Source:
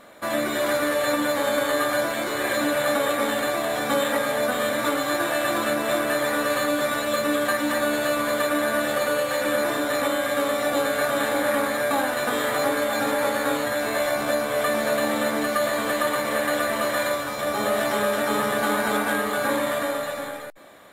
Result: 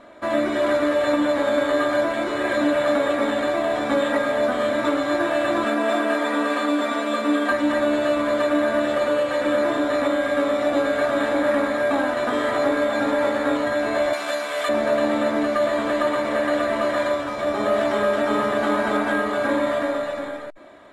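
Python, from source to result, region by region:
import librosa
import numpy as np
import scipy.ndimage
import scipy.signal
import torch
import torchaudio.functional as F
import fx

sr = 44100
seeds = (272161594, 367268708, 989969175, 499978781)

y = fx.chain(x, sr, fx.highpass(hz=200.0, slope=24),
    fx.comb(ms=4.3, depth=0.5), at=(5.64, 7.52))
y = fx.chain(y, sr, fx.highpass(hz=1100.0, slope=6),
    fx.high_shelf(hz=2300.0, db=8.5), at=(14.13, 14.69))
y = scipy.signal.sosfilt(scipy.signal.butter(2, 6800.0, 'lowpass', fs=sr, output='sos'), y)
y = fx.high_shelf(y, sr, hz=2200.0, db=-9.0)
y = y + 0.44 * np.pad(y, (int(3.1 * sr / 1000.0), 0))[:len(y)]
y = F.gain(torch.from_numpy(y), 2.5).numpy()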